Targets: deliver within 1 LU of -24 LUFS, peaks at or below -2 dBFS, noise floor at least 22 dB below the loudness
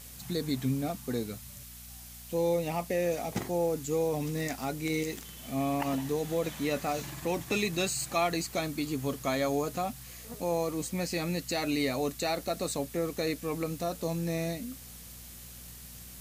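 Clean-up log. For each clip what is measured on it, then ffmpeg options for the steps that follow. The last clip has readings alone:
hum 60 Hz; harmonics up to 240 Hz; hum level -50 dBFS; noise floor -47 dBFS; noise floor target -54 dBFS; loudness -32.0 LUFS; peak -15.5 dBFS; loudness target -24.0 LUFS
-> -af "bandreject=f=60:t=h:w=4,bandreject=f=120:t=h:w=4,bandreject=f=180:t=h:w=4,bandreject=f=240:t=h:w=4"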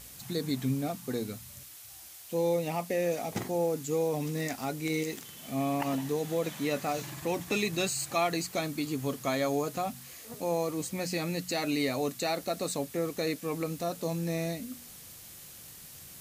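hum none; noise floor -49 dBFS; noise floor target -54 dBFS
-> -af "afftdn=nr=6:nf=-49"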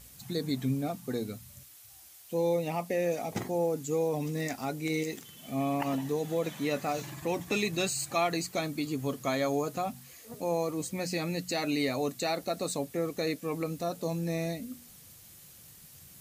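noise floor -53 dBFS; noise floor target -54 dBFS
-> -af "afftdn=nr=6:nf=-53"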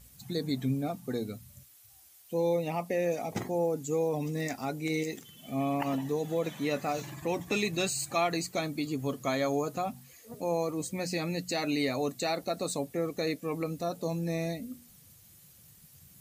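noise floor -57 dBFS; loudness -32.0 LUFS; peak -16.0 dBFS; loudness target -24.0 LUFS
-> -af "volume=8dB"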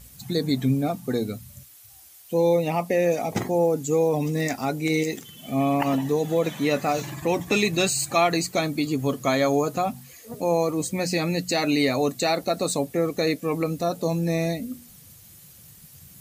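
loudness -24.0 LUFS; peak -8.0 dBFS; noise floor -49 dBFS

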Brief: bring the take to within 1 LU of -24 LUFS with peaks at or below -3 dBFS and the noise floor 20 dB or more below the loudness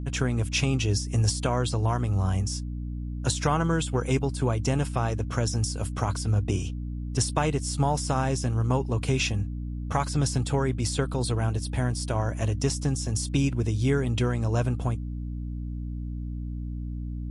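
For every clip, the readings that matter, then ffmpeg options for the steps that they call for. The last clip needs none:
hum 60 Hz; harmonics up to 300 Hz; hum level -30 dBFS; loudness -27.5 LUFS; peak -9.5 dBFS; loudness target -24.0 LUFS
-> -af "bandreject=f=60:t=h:w=4,bandreject=f=120:t=h:w=4,bandreject=f=180:t=h:w=4,bandreject=f=240:t=h:w=4,bandreject=f=300:t=h:w=4"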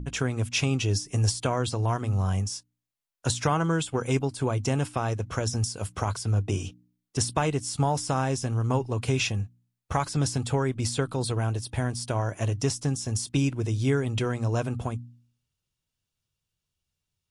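hum none; loudness -28.0 LUFS; peak -10.5 dBFS; loudness target -24.0 LUFS
-> -af "volume=4dB"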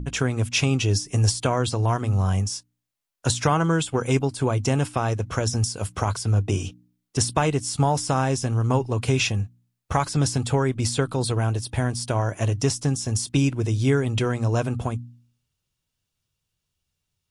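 loudness -24.0 LUFS; peak -6.5 dBFS; noise floor -81 dBFS

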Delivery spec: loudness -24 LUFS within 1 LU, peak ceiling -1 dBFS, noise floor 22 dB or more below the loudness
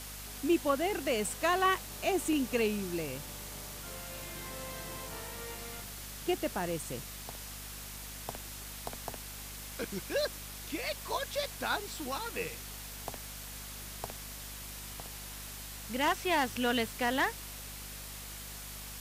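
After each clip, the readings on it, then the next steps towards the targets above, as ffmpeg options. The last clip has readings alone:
hum 50 Hz; harmonics up to 250 Hz; hum level -47 dBFS; noise floor -45 dBFS; noise floor target -58 dBFS; loudness -35.5 LUFS; peak -17.0 dBFS; loudness target -24.0 LUFS
-> -af "bandreject=f=50:t=h:w=4,bandreject=f=100:t=h:w=4,bandreject=f=150:t=h:w=4,bandreject=f=200:t=h:w=4,bandreject=f=250:t=h:w=4"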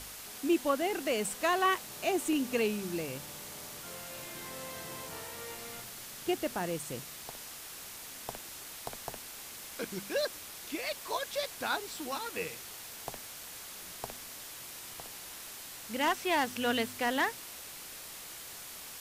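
hum none; noise floor -46 dBFS; noise floor target -58 dBFS
-> -af "afftdn=nr=12:nf=-46"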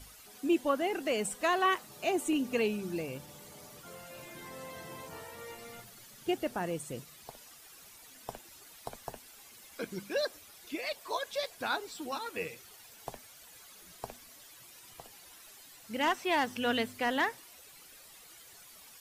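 noise floor -55 dBFS; noise floor target -56 dBFS
-> -af "afftdn=nr=6:nf=-55"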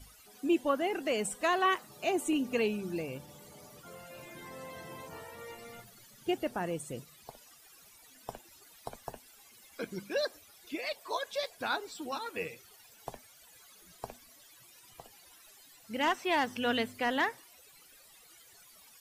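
noise floor -59 dBFS; loudness -34.0 LUFS; peak -17.5 dBFS; loudness target -24.0 LUFS
-> -af "volume=10dB"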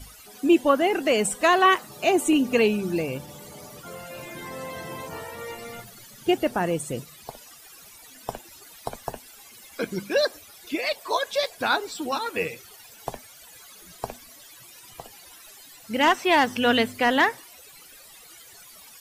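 loudness -24.0 LUFS; peak -7.5 dBFS; noise floor -49 dBFS

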